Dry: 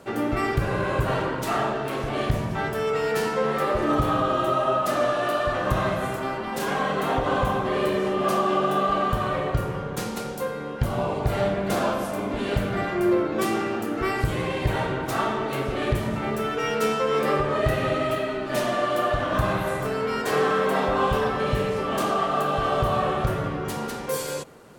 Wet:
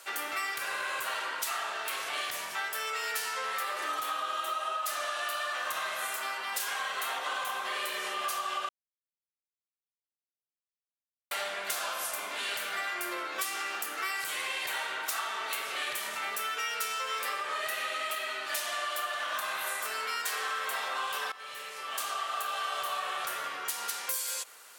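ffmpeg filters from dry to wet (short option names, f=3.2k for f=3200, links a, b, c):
-filter_complex "[0:a]asplit=4[a][b][c][d];[a]atrim=end=8.69,asetpts=PTS-STARTPTS,afade=t=out:st=8.686:d=0.004:c=hsin[e];[b]atrim=start=8.69:end=11.31,asetpts=PTS-STARTPTS,volume=0[f];[c]atrim=start=11.31:end=21.32,asetpts=PTS-STARTPTS,afade=t=in:d=0.004:c=hsin,afade=t=out:st=10.006:d=0.004:c=hsin:silence=0.133352[g];[d]atrim=start=21.32,asetpts=PTS-STARTPTS,afade=t=in:d=1.5:silence=0.133352[h];[e][f][g][h]concat=n=4:v=0:a=1,highpass=1.4k,aemphasis=mode=production:type=cd,acompressor=threshold=-33dB:ratio=6,volume=2.5dB"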